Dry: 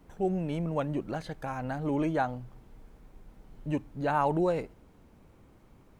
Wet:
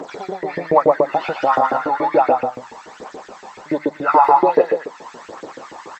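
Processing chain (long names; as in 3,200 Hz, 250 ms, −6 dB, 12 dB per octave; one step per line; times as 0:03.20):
hearing-aid frequency compression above 1,100 Hz 1.5 to 1
downward compressor 2 to 1, threshold −51 dBFS, peak gain reduction 15 dB
phase shifter 1.3 Hz, delay 1.2 ms, feedback 64%
on a send: multi-tap delay 114/229 ms −3/−8.5 dB
on the sum: auto-filter high-pass saw up 7 Hz 370–2,200 Hz
boost into a limiter +25 dB
level −1 dB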